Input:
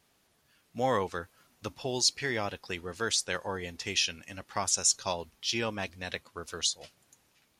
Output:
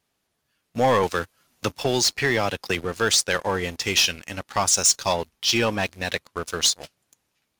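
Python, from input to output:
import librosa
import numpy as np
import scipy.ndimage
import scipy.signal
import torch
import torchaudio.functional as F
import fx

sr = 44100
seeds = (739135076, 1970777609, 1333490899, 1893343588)

y = fx.leveller(x, sr, passes=3)
y = fx.band_squash(y, sr, depth_pct=40, at=(1.03, 2.85))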